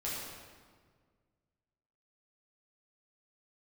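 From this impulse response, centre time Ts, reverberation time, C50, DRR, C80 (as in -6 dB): 0.104 s, 1.7 s, -1.5 dB, -8.0 dB, 1.0 dB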